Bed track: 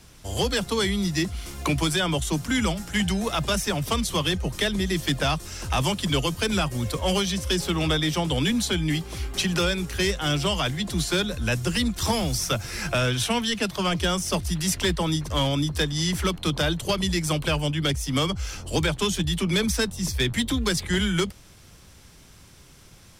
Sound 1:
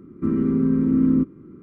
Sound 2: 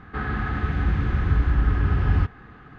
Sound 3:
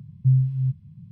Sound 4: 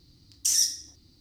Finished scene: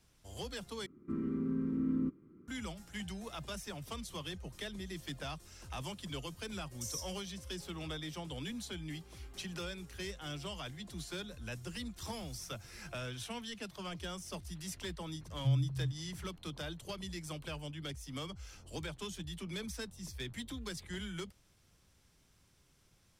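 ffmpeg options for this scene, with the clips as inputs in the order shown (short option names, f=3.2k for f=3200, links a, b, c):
-filter_complex "[0:a]volume=-18.5dB[a];[1:a]highshelf=f=2k:g=7.5[b];[4:a]equalizer=f=1.8k:w=0.57:g=-14.5[c];[a]asplit=2[d][e];[d]atrim=end=0.864[f];[b]atrim=end=1.62,asetpts=PTS-STARTPTS,volume=-15.5dB[g];[e]atrim=start=2.476[h];[c]atrim=end=1.2,asetpts=PTS-STARTPTS,volume=-15.5dB,afade=t=in:d=0.004:c=hsin,afade=t=out:st=1.196:d=0.004:c=hsin,adelay=6360[i];[3:a]atrim=end=1.11,asetpts=PTS-STARTPTS,volume=-12.5dB,afade=t=in:d=0.004:c=hsin,afade=t=out:st=1.106:d=0.004:c=hsin,adelay=15200[j];[f][g]acrossfade=d=0.004:c1=hsin:c2=hsin[k];[k][h]acrossfade=d=0.004:c1=hsin:c2=hsin[l];[l][i][j]amix=inputs=3:normalize=0"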